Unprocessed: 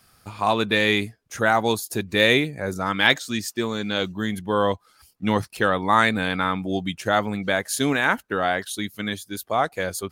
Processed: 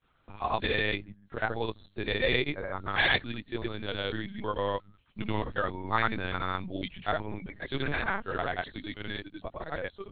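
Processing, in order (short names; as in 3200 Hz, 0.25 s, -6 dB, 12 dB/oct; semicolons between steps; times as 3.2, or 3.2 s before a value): notches 50/100/150/200/250 Hz; grains, pitch spread up and down by 0 st; LPC vocoder at 8 kHz pitch kept; gain -7.5 dB; WMA 64 kbps 32000 Hz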